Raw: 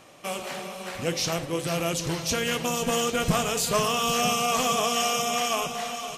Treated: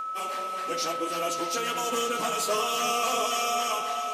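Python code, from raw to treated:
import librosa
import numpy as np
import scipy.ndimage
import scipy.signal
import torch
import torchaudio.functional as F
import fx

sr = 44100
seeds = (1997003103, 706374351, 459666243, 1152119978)

y = scipy.signal.sosfilt(scipy.signal.butter(4, 260.0, 'highpass', fs=sr, output='sos'), x)
y = y + 10.0 ** (-29.0 / 20.0) * np.sin(2.0 * np.pi * 1300.0 * np.arange(len(y)) / sr)
y = fx.rev_spring(y, sr, rt60_s=2.5, pass_ms=(35,), chirp_ms=45, drr_db=7.0)
y = fx.stretch_vocoder_free(y, sr, factor=0.67)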